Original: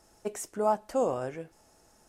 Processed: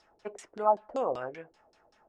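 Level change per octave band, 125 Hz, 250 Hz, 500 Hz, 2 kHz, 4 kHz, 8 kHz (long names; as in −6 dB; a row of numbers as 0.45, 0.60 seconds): −9.5 dB, −7.0 dB, −2.0 dB, 0.0 dB, can't be measured, below −10 dB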